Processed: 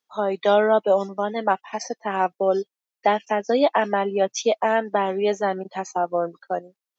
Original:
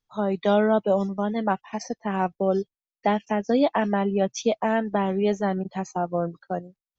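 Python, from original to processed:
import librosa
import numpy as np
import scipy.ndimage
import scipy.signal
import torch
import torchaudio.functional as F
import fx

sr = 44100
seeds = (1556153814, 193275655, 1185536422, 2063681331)

y = scipy.signal.sosfilt(scipy.signal.butter(2, 380.0, 'highpass', fs=sr, output='sos'), x)
y = y * librosa.db_to_amplitude(4.5)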